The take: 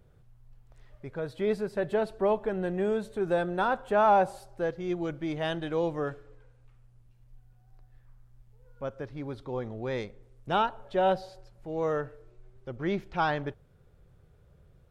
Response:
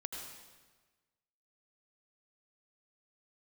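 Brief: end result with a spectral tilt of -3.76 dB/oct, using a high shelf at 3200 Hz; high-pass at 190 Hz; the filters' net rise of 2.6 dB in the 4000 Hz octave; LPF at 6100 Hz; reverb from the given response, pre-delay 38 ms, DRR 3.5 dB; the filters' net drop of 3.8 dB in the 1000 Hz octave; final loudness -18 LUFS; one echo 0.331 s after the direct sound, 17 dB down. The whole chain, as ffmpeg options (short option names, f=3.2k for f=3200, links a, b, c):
-filter_complex "[0:a]highpass=190,lowpass=6.1k,equalizer=f=1k:t=o:g=-5,highshelf=f=3.2k:g=-5.5,equalizer=f=4k:t=o:g=8,aecho=1:1:331:0.141,asplit=2[a][b];[1:a]atrim=start_sample=2205,adelay=38[c];[b][c]afir=irnorm=-1:irlink=0,volume=-3dB[d];[a][d]amix=inputs=2:normalize=0,volume=12.5dB"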